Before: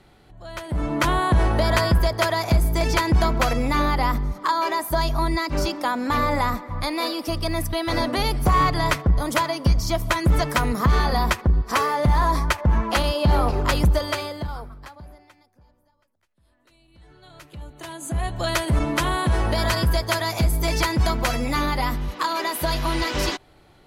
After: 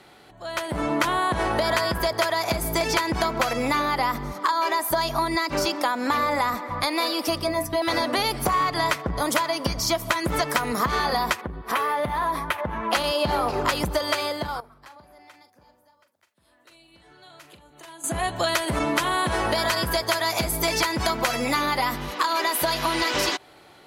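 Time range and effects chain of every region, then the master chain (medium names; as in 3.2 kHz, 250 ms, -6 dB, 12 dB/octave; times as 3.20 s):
7.42–7.82 s: bass shelf 460 Hz +11.5 dB + band-stop 4 kHz, Q 21 + inharmonic resonator 60 Hz, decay 0.26 s, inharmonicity 0.002
11.41–12.93 s: high-order bell 6 kHz -10 dB 1.1 oct + compression 2:1, threshold -29 dBFS
14.60–18.04 s: compression 3:1, threshold -51 dBFS + doubling 42 ms -10.5 dB
whole clip: high-pass 450 Hz 6 dB/octave; compression, threshold -27 dBFS; trim +7 dB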